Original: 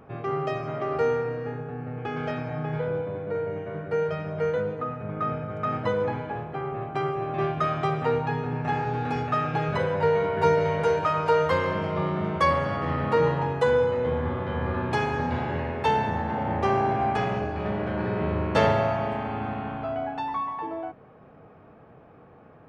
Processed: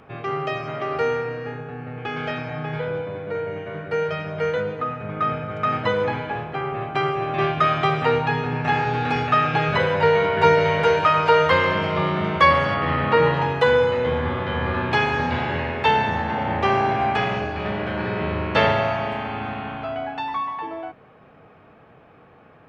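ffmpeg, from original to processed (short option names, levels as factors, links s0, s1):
-filter_complex "[0:a]asettb=1/sr,asplit=3[s0][s1][s2];[s0]atrim=end=12.744[s3];[s1]atrim=start=12.74:end=13.34,asetpts=PTS-STARTPTS,afade=t=in:d=0.004:c=qsin,afade=t=out:st=0.596:d=0.004:c=qsin,lowpass=3800[s4];[s2]atrim=start=13.336[s5];[s3][s4]acrossfade=d=0.004:c1=hsin:c2=qsin[s6];[s6][s5]acrossfade=d=0.004:c1=qsin:c2=hsin,acrossover=split=4100[s7][s8];[s8]acompressor=threshold=0.00158:ratio=4:attack=1:release=60[s9];[s7][s9]amix=inputs=2:normalize=0,equalizer=f=3200:t=o:w=2.4:g=10,dynaudnorm=f=350:g=31:m=1.78"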